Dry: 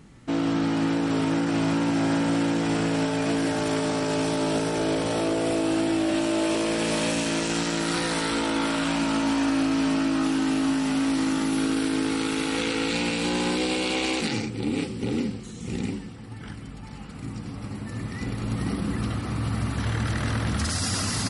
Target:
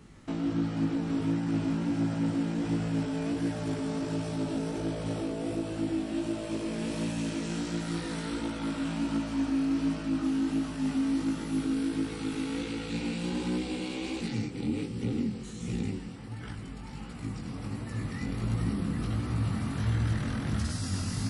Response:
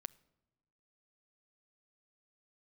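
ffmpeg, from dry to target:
-filter_complex "[0:a]acrossover=split=290[s0][s1];[s1]acompressor=threshold=0.0126:ratio=4[s2];[s0][s2]amix=inputs=2:normalize=0,flanger=delay=16.5:depth=6.5:speed=1.4,volume=1.12"

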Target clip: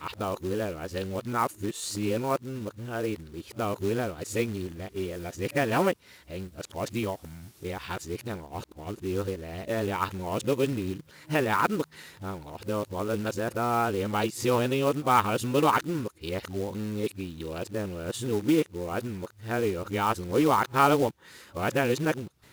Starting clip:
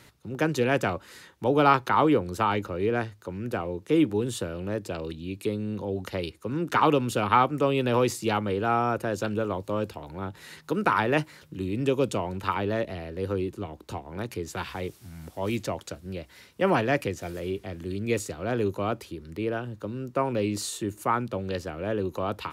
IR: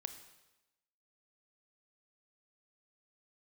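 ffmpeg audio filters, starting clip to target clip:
-af "areverse,acrusher=bits=4:mode=log:mix=0:aa=0.000001,volume=0.841"

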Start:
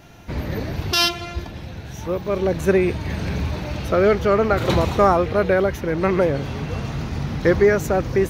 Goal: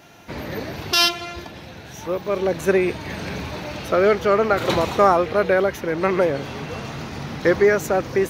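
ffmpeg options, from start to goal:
-af "highpass=f=320:p=1,volume=1.19"

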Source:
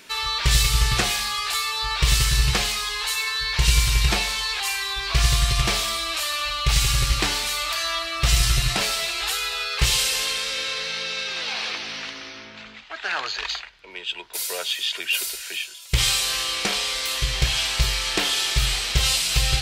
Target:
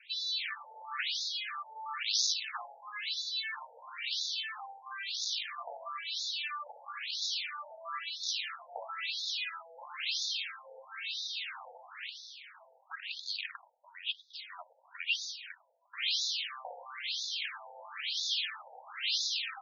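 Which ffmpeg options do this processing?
-filter_complex "[0:a]asettb=1/sr,asplit=3[s0][s1][s2];[s0]atrim=end=1.534[s3];[s1]atrim=start=1.53:end=2.33,asetpts=PTS-STARTPTS,afade=t=in:d=0.004:c=qsin,afade=t=out:st=0.796:d=0.004:c=qsin,bass=f=250:g=9,treble=f=4000:g=14[s4];[s2]atrim=start=2.326[s5];[s3][s4]acrossfade=d=0.004:c1=hsin:c2=qsin[s6];[s6][s5]acrossfade=d=0.004:c1=qsin:c2=hsin,aeval=exprs='(tanh(3.98*val(0)+0.25)-tanh(0.25))/3.98':c=same,adynamicequalizer=threshold=0.00501:dfrequency=580:dqfactor=1.7:tfrequency=580:tqfactor=1.7:attack=5:release=100:ratio=0.375:range=1.5:mode=cutabove:tftype=bell,afftfilt=real='re*between(b*sr/1024,640*pow(4900/640,0.5+0.5*sin(2*PI*1*pts/sr))/1.41,640*pow(4900/640,0.5+0.5*sin(2*PI*1*pts/sr))*1.41)':imag='im*between(b*sr/1024,640*pow(4900/640,0.5+0.5*sin(2*PI*1*pts/sr))/1.41,640*pow(4900/640,0.5+0.5*sin(2*PI*1*pts/sr))*1.41)':win_size=1024:overlap=0.75,volume=0.501"

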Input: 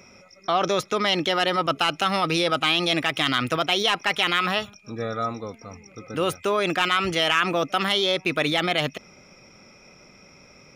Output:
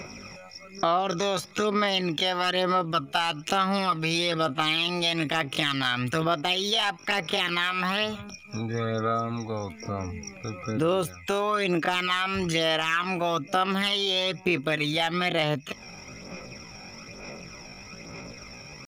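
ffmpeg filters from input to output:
-af "atempo=0.57,aphaser=in_gain=1:out_gain=1:delay=1.3:decay=0.48:speed=1.1:type=sinusoidal,acompressor=threshold=0.0178:ratio=2.5,volume=2.24"

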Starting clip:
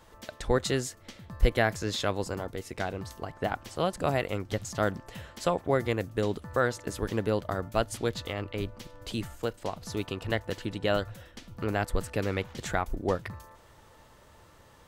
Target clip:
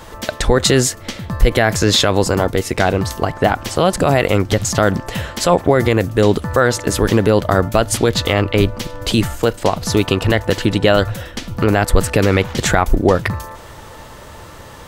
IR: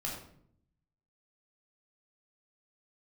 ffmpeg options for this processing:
-af "alimiter=level_in=10.6:limit=0.891:release=50:level=0:latency=1,volume=0.891"

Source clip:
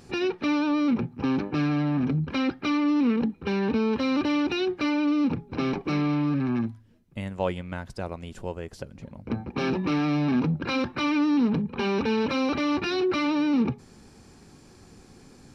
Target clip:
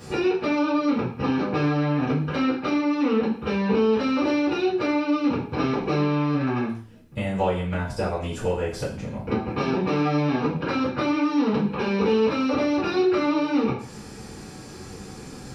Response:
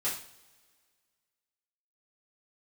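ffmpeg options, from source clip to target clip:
-filter_complex "[0:a]acrossover=split=430|950[s0][s1][s2];[s0]acompressor=threshold=0.0126:ratio=4[s3];[s1]acompressor=threshold=0.0126:ratio=4[s4];[s2]acompressor=threshold=0.00447:ratio=4[s5];[s3][s4][s5]amix=inputs=3:normalize=0[s6];[1:a]atrim=start_sample=2205,afade=t=out:st=0.26:d=0.01,atrim=end_sample=11907[s7];[s6][s7]afir=irnorm=-1:irlink=0,volume=2.37"

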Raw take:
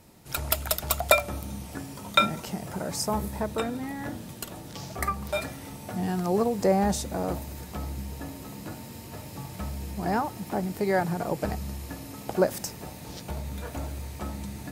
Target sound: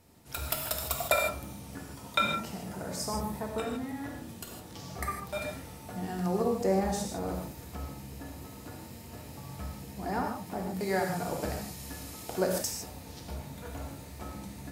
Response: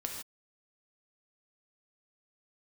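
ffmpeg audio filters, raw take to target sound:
-filter_complex "[0:a]asettb=1/sr,asplit=3[s0][s1][s2];[s0]atrim=end=10.804[s3];[s1]atrim=start=10.8:end=12.8,asetpts=PTS-STARTPTS,afade=t=in:d=0.004:c=qsin,afade=t=out:st=1.996:d=0.004:c=qsin,equalizer=f=8000:t=o:w=2.9:g=7.5[s4];[s2]atrim=start=12.796[s5];[s3][s4]acrossfade=d=0.004:c1=hsin:c2=qsin[s6];[s6][s5]acrossfade=d=0.004:c1=qsin:c2=hsin[s7];[1:a]atrim=start_sample=2205[s8];[s7][s8]afir=irnorm=-1:irlink=0,volume=0.531"

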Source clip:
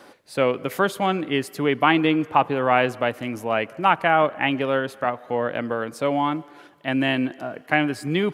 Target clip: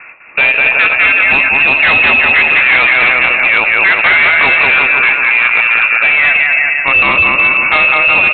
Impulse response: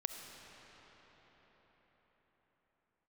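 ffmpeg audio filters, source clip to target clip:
-filter_complex "[0:a]aecho=1:1:200|370|514.5|637.3|741.7:0.631|0.398|0.251|0.158|0.1,asplit=2[s0][s1];[s1]aeval=exprs='sgn(val(0))*max(abs(val(0))-0.0178,0)':c=same,volume=0.596[s2];[s0][s2]amix=inputs=2:normalize=0,lowpass=f=2500:t=q:w=0.5098,lowpass=f=2500:t=q:w=0.6013,lowpass=f=2500:t=q:w=0.9,lowpass=f=2500:t=q:w=2.563,afreqshift=-2900,aresample=8000,asoftclip=type=hard:threshold=0.188,aresample=44100[s3];[1:a]atrim=start_sample=2205,atrim=end_sample=3969[s4];[s3][s4]afir=irnorm=-1:irlink=0,alimiter=level_in=7.08:limit=0.891:release=50:level=0:latency=1,volume=0.891"

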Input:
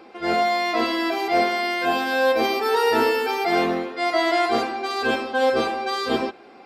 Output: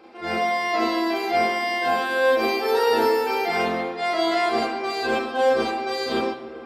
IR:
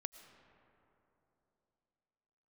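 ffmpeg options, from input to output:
-filter_complex "[0:a]asplit=2[s0][s1];[1:a]atrim=start_sample=2205,asetrate=39690,aresample=44100,adelay=36[s2];[s1][s2]afir=irnorm=-1:irlink=0,volume=1.68[s3];[s0][s3]amix=inputs=2:normalize=0,volume=0.562"

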